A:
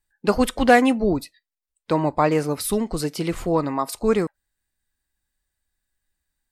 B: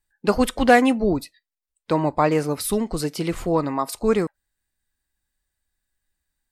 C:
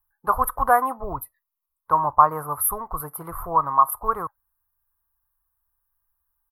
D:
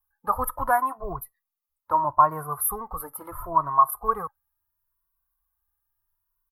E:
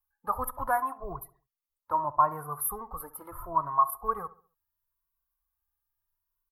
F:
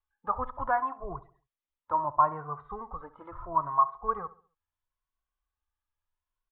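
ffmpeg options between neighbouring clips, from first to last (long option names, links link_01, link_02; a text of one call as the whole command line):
ffmpeg -i in.wav -af anull out.wav
ffmpeg -i in.wav -af "firequalizer=gain_entry='entry(110,0);entry(210,-20);entry(1100,14);entry(1600,-5);entry(2500,-29);entry(7100,-30);entry(11000,12)':delay=0.05:min_phase=1,volume=-1dB" out.wav
ffmpeg -i in.wav -filter_complex "[0:a]asplit=2[link_01][link_02];[link_02]adelay=2.1,afreqshift=0.73[link_03];[link_01][link_03]amix=inputs=2:normalize=1" out.wav
ffmpeg -i in.wav -filter_complex "[0:a]asplit=2[link_01][link_02];[link_02]adelay=68,lowpass=frequency=1600:poles=1,volume=-16dB,asplit=2[link_03][link_04];[link_04]adelay=68,lowpass=frequency=1600:poles=1,volume=0.42,asplit=2[link_05][link_06];[link_06]adelay=68,lowpass=frequency=1600:poles=1,volume=0.42,asplit=2[link_07][link_08];[link_08]adelay=68,lowpass=frequency=1600:poles=1,volume=0.42[link_09];[link_01][link_03][link_05][link_07][link_09]amix=inputs=5:normalize=0,volume=-5.5dB" out.wav
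ffmpeg -i in.wav -af "aresample=8000,aresample=44100" out.wav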